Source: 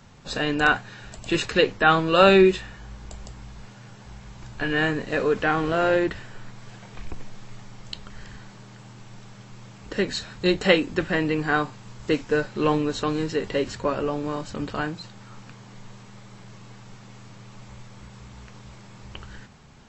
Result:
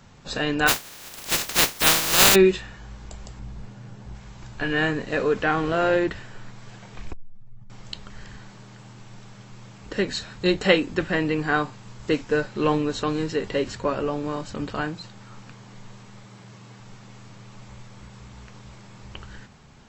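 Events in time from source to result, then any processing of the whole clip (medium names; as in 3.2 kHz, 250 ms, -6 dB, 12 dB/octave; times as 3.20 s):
0.67–2.34 s: spectral contrast reduction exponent 0.11
3.39–4.15 s: tilt shelf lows +5 dB, about 660 Hz
7.13–7.70 s: spectral contrast enhancement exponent 1.9
16.24–16.80 s: high-pass 54 Hz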